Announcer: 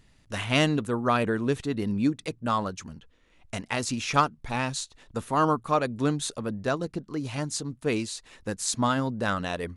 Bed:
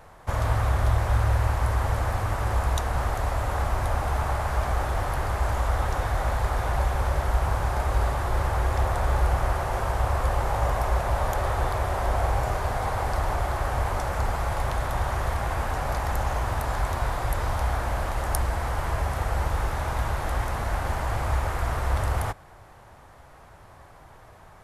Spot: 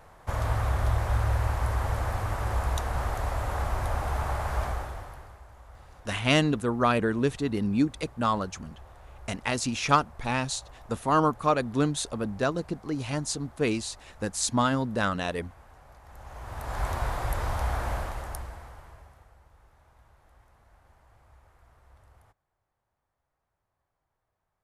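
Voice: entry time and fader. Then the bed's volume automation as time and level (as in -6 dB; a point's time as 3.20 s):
5.75 s, +0.5 dB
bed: 4.64 s -3.5 dB
5.46 s -25.5 dB
16.01 s -25.5 dB
16.84 s -3 dB
17.93 s -3 dB
19.41 s -32.5 dB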